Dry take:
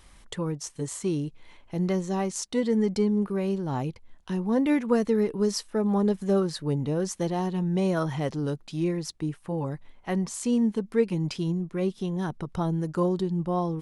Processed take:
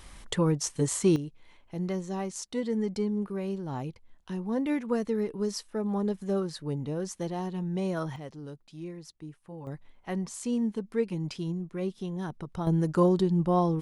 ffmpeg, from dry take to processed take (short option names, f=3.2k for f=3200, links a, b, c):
-af "asetnsamples=n=441:p=0,asendcmd='1.16 volume volume -5.5dB;8.16 volume volume -13dB;9.67 volume volume -5dB;12.67 volume volume 2.5dB',volume=5dB"